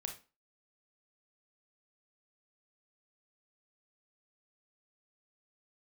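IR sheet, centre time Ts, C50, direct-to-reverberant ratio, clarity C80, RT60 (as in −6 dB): 17 ms, 9.0 dB, 3.5 dB, 16.0 dB, 0.30 s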